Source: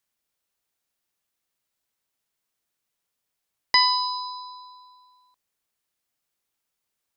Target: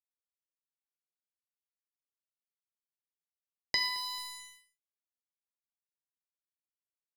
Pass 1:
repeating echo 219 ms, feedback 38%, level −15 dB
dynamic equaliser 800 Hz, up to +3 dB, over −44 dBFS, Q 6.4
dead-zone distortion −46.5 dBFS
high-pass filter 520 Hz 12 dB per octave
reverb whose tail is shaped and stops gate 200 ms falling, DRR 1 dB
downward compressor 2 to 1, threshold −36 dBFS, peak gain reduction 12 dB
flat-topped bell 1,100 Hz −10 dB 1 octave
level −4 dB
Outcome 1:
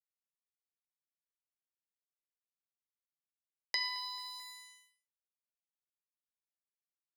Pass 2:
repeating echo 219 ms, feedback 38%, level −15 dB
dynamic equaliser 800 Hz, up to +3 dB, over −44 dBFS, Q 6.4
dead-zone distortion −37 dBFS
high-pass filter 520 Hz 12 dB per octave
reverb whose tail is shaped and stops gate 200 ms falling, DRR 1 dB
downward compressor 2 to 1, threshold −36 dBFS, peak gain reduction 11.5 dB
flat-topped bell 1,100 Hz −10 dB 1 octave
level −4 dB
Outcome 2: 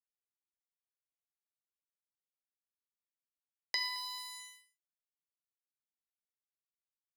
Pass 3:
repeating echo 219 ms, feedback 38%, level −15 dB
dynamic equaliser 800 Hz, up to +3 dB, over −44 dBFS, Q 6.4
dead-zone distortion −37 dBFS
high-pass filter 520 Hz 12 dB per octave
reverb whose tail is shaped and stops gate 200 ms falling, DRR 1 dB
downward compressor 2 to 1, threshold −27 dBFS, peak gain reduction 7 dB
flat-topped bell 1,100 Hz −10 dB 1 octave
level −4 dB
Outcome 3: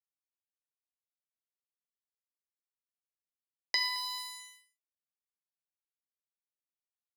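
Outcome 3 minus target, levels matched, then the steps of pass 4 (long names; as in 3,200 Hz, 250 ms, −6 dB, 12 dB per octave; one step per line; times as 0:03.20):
500 Hz band −3.5 dB
repeating echo 219 ms, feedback 38%, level −15 dB
dynamic equaliser 800 Hz, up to +3 dB, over −44 dBFS, Q 6.4
dead-zone distortion −37 dBFS
reverb whose tail is shaped and stops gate 200 ms falling, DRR 1 dB
downward compressor 2 to 1, threshold −27 dBFS, peak gain reduction 7 dB
flat-topped bell 1,100 Hz −10 dB 1 octave
level −4 dB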